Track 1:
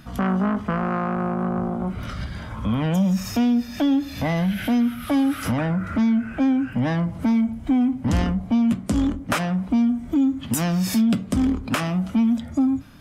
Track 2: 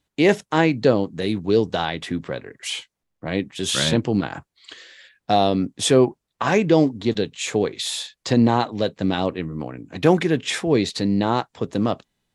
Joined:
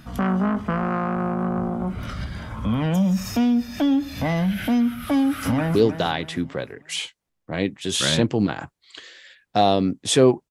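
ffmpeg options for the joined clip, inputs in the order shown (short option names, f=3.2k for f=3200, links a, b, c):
-filter_complex "[0:a]apad=whole_dur=10.5,atrim=end=10.5,atrim=end=5.752[a];[1:a]atrim=start=1.488:end=6.24[b];[a][b]acrossfade=d=0.004:c1=hsin:c2=hsin,asplit=2[c][d];[d]afade=t=in:st=5.14:d=0.01,afade=t=out:st=5.75:d=0.01,aecho=0:1:310|620|930|1240:0.298538|0.119415|0.0477661|0.0191064[e];[c][e]amix=inputs=2:normalize=0"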